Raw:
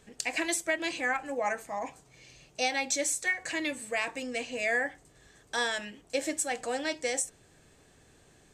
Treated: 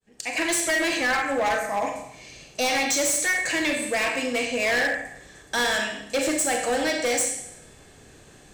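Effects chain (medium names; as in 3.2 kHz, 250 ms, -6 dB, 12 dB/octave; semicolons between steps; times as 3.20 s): fade-in on the opening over 0.57 s; Schroeder reverb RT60 0.76 s, combs from 29 ms, DRR 3 dB; hard clipper -28.5 dBFS, distortion -9 dB; trim +8.5 dB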